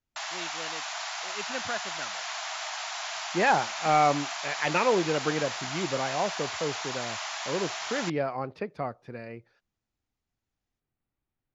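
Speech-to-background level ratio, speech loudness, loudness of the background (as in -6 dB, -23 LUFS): 4.0 dB, -29.5 LUFS, -33.5 LUFS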